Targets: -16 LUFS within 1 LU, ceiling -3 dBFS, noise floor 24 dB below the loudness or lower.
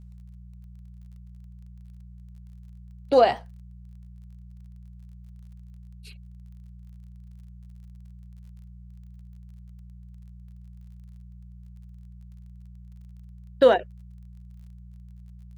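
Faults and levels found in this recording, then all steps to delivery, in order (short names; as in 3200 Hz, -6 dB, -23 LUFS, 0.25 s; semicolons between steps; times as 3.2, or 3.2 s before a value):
ticks 32/s; hum 60 Hz; harmonics up to 180 Hz; hum level -43 dBFS; loudness -21.0 LUFS; peak -6.5 dBFS; loudness target -16.0 LUFS
-> de-click; de-hum 60 Hz, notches 3; gain +5 dB; limiter -3 dBFS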